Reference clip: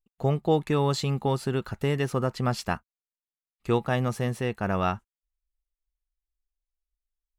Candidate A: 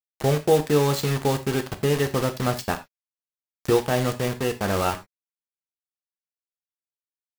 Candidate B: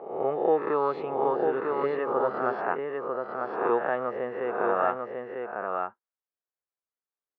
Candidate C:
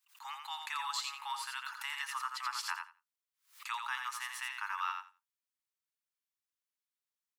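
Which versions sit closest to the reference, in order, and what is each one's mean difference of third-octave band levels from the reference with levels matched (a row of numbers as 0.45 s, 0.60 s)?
A, B, C; 8.0 dB, 11.5 dB, 21.5 dB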